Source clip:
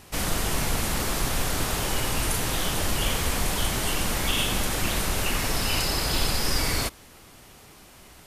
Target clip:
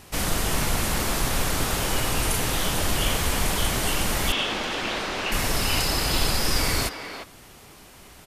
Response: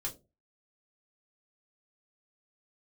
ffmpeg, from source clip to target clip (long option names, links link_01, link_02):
-filter_complex "[0:a]asettb=1/sr,asplit=3[link_01][link_02][link_03];[link_01]atrim=end=4.324[link_04];[link_02]atrim=start=4.32:end=5.32,asetpts=PTS-STARTPTS,afade=type=in:duration=0.004:curve=qsin,afade=type=out:start_time=0.996:duration=0.004:curve=qsin,acrossover=split=220 5500:gain=0.158 1 0.0708[link_05][link_06][link_07];[link_05][link_06][link_07]amix=inputs=3:normalize=0[link_08];[link_03]atrim=start=5.316[link_09];[link_04][link_08]acrossfade=duration=0.004:curve1=hsin:curve2=qsin[link_10];[link_10][link_09]acrossfade=duration=0.004:curve1=qsin:curve2=hsin,asplit=2[link_11][link_12];[link_12]adelay=350,highpass=300,lowpass=3400,asoftclip=type=hard:threshold=-20.5dB,volume=-7dB[link_13];[link_11][link_13]amix=inputs=2:normalize=0,volume=1.5dB"